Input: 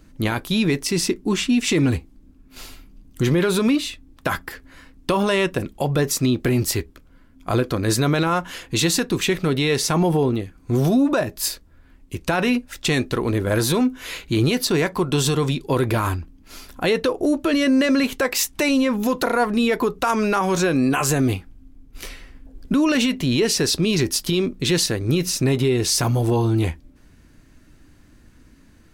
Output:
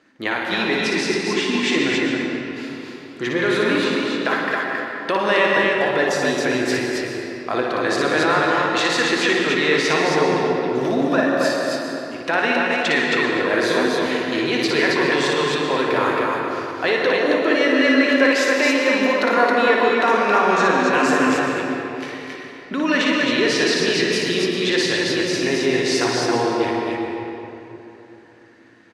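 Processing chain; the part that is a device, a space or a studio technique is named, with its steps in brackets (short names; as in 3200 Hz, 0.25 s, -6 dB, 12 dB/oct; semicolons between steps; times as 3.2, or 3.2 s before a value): station announcement (BPF 380–4300 Hz; bell 1800 Hz +8 dB 0.3 oct; loudspeakers at several distances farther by 20 m -4 dB, 93 m -3 dB; reverb RT60 3.2 s, pre-delay 0.1 s, DRR 0.5 dB)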